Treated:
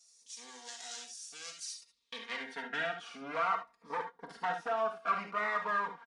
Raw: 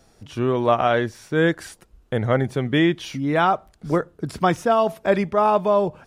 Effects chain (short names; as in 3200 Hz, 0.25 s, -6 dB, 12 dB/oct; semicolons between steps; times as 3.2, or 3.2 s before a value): minimum comb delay 4.4 ms; de-esser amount 70%; tilt +1.5 dB/oct; comb 4.2 ms, depth 56%; compressor 3:1, threshold -20 dBFS, peak gain reduction 6.5 dB; wavefolder -16.5 dBFS; non-linear reverb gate 90 ms rising, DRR 5 dB; band-pass sweep 6900 Hz -> 1200 Hz, 1.56–2.91; downsampling 22050 Hz; cascading phaser falling 0.55 Hz